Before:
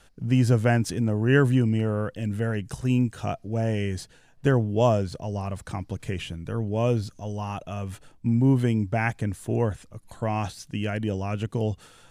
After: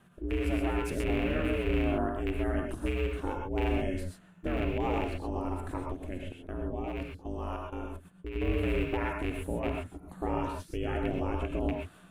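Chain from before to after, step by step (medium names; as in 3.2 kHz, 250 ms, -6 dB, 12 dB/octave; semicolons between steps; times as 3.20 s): rattle on loud lows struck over -22 dBFS, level -17 dBFS; peaking EQ 5.5 kHz -14.5 dB 1.4 oct; 5.92–8.36 s: level held to a coarse grid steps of 16 dB; peak limiter -19.5 dBFS, peak gain reduction 10.5 dB; ring modulator 180 Hz; gated-style reverb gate 150 ms rising, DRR 1 dB; trim -1.5 dB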